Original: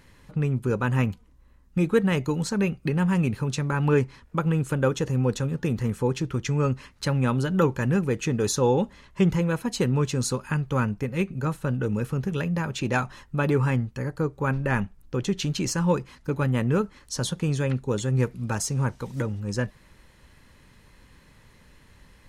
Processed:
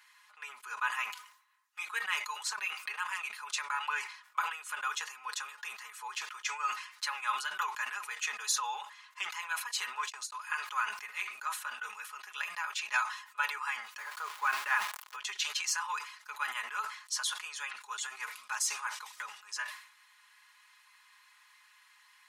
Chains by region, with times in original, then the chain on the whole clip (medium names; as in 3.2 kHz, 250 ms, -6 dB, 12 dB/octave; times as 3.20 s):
9.95–10.37 s: bass shelf 180 Hz +10.5 dB + transient shaper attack -9 dB, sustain -5 dB + gate -28 dBFS, range -45 dB
13.98–15.16 s: jump at every zero crossing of -37.5 dBFS + bass shelf 480 Hz +10.5 dB
whole clip: Chebyshev high-pass 1 kHz, order 4; comb 4.8 ms, depth 75%; decay stretcher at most 93 dB/s; trim -3 dB